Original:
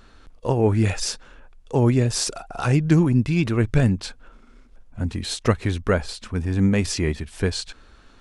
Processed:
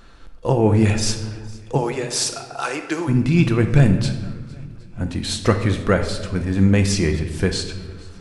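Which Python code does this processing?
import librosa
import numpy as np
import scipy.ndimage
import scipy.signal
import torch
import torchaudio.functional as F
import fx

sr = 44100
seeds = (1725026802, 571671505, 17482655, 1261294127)

y = fx.bessel_highpass(x, sr, hz=520.0, order=4, at=(1.77, 3.07), fade=0.02)
y = fx.echo_swing(y, sr, ms=767, ratio=1.5, feedback_pct=31, wet_db=-24.0)
y = fx.room_shoebox(y, sr, seeds[0], volume_m3=800.0, walls='mixed', distance_m=0.78)
y = y * 10.0 ** (2.5 / 20.0)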